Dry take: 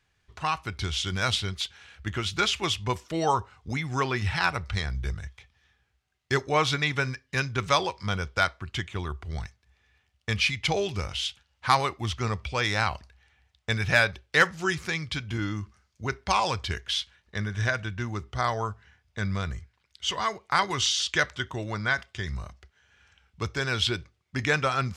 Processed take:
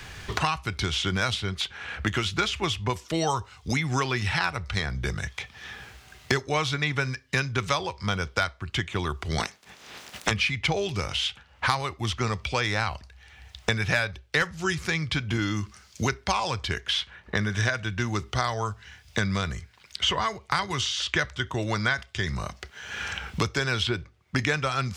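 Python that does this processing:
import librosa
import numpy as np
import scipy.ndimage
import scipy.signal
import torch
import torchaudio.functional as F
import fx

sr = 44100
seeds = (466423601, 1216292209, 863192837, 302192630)

y = fx.spec_clip(x, sr, under_db=27, at=(9.38, 10.3), fade=0.02)
y = fx.band_squash(y, sr, depth_pct=100)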